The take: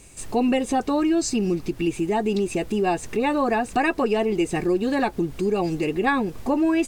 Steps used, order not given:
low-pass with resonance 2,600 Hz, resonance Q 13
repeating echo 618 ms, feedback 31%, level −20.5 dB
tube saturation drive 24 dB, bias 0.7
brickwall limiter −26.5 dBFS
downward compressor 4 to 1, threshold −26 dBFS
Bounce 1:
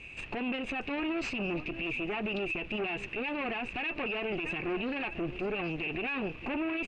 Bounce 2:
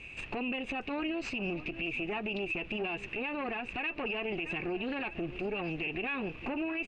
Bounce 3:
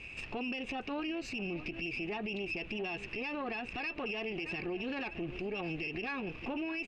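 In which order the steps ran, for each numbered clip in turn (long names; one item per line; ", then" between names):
repeating echo, then tube saturation, then low-pass with resonance, then brickwall limiter, then downward compressor
repeating echo, then downward compressor, then tube saturation, then low-pass with resonance, then brickwall limiter
repeating echo, then downward compressor, then low-pass with resonance, then brickwall limiter, then tube saturation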